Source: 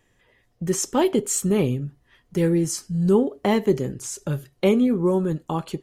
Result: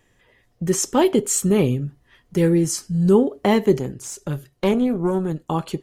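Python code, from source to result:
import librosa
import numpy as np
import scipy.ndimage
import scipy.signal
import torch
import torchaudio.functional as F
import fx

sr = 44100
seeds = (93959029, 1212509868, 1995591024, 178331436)

y = fx.tube_stage(x, sr, drive_db=13.0, bias=0.7, at=(3.79, 5.5))
y = y * librosa.db_to_amplitude(3.0)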